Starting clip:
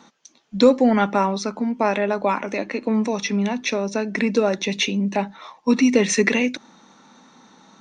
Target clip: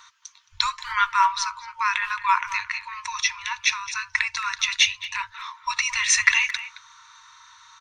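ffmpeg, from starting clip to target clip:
ffmpeg -i in.wav -filter_complex "[0:a]asplit=2[link_01][link_02];[link_02]adelay=220,highpass=300,lowpass=3400,asoftclip=type=hard:threshold=-13.5dB,volume=-13dB[link_03];[link_01][link_03]amix=inputs=2:normalize=0,afftfilt=real='re*(1-between(b*sr/4096,110,910))':imag='im*(1-between(b*sr/4096,110,910))':win_size=4096:overlap=0.75,volume=4.5dB" out.wav

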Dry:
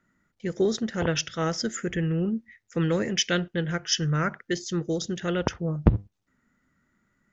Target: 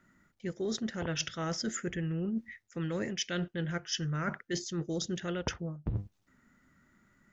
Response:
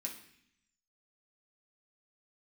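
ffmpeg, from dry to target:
-af "bandreject=frequency=470:width=12,areverse,acompressor=threshold=-35dB:ratio=12,areverse,volume=4dB"

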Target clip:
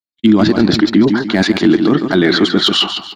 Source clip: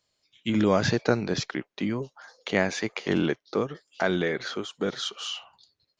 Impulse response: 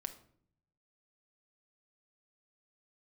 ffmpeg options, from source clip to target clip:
-filter_complex "[0:a]areverse,acompressor=threshold=-37dB:ratio=8,areverse,asoftclip=type=hard:threshold=-30dB,asplit=2[link_01][link_02];[link_02]aecho=0:1:275|550|825|1100:0.355|0.128|0.046|0.0166[link_03];[link_01][link_03]amix=inputs=2:normalize=0,acontrast=45,equalizer=frequency=220:width_type=o:width=0.36:gain=7,agate=range=-54dB:threshold=-56dB:ratio=16:detection=peak,equalizer=frequency=125:width_type=o:width=0.33:gain=-8,equalizer=frequency=315:width_type=o:width=0.33:gain=11,equalizer=frequency=500:width_type=o:width=0.33:gain=-12,equalizer=frequency=2500:width_type=o:width=0.33:gain=-6,equalizer=frequency=4000:width_type=o:width=0.33:gain=6,equalizer=frequency=6300:width_type=o:width=0.33:gain=-12,atempo=1.9,alimiter=level_in=23.5dB:limit=-1dB:release=50:level=0:latency=1,volume=-1dB"

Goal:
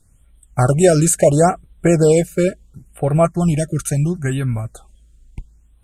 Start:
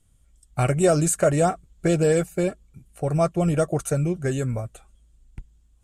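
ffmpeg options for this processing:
ffmpeg -i in.wav -filter_complex "[0:a]asettb=1/sr,asplit=3[link_01][link_02][link_03];[link_01]atrim=end=3.254[link_04];[link_02]atrim=start=3.25:end=4.65,asetpts=PTS-STARTPTS,afade=type=in:duration=0.004:curve=qsin,afade=type=out:start_time=1.396:duration=0.004:curve=qsin,equalizer=frequency=500:width_type=o:width=0.78:gain=-13[link_05];[link_03]atrim=start=4.646[link_06];[link_04][link_05]acrossfade=duration=0.004:curve1=hsin:curve2=qsin[link_07];[link_07][link_06]acrossfade=duration=0.004:curve1=qsin:curve2=hsin,afftfilt=real='re*(1-between(b*sr/1024,830*pow(6000/830,0.5+0.5*sin(2*PI*0.73*pts/sr))/1.41,830*pow(6000/830,0.5+0.5*sin(2*PI*0.73*pts/sr))*1.41))':imag='im*(1-between(b*sr/1024,830*pow(6000/830,0.5+0.5*sin(2*PI*0.73*pts/sr))/1.41,830*pow(6000/830,0.5+0.5*sin(2*PI*0.73*pts/sr))*1.41))':win_size=1024:overlap=0.75,volume=7dB" out.wav

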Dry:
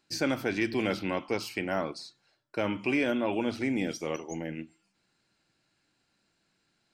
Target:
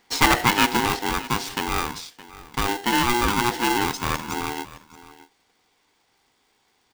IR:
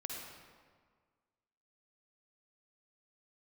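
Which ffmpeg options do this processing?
-af "asetnsamples=nb_out_samples=441:pad=0,asendcmd='0.77 equalizer g -5;3.07 equalizer g 2.5',equalizer=frequency=1200:width=0.94:gain=12,aecho=1:1:617:0.126,aeval=exprs='val(0)*sgn(sin(2*PI*600*n/s))':channel_layout=same,volume=7dB"

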